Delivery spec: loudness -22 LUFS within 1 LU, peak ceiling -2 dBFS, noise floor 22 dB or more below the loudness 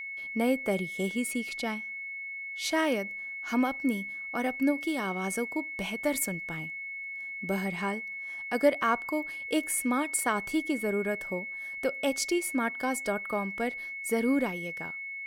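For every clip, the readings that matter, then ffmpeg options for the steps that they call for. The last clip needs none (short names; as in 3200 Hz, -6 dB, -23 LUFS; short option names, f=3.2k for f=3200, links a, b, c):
steady tone 2200 Hz; tone level -36 dBFS; loudness -30.5 LUFS; peak -11.5 dBFS; loudness target -22.0 LUFS
-> -af "bandreject=f=2.2k:w=30"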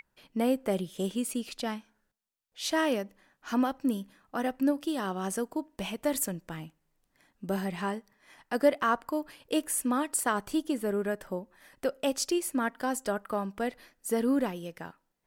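steady tone none; loudness -31.0 LUFS; peak -12.0 dBFS; loudness target -22.0 LUFS
-> -af "volume=9dB"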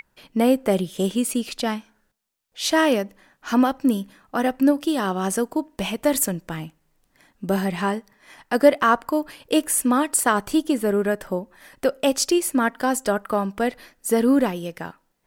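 loudness -22.0 LUFS; peak -3.0 dBFS; noise floor -69 dBFS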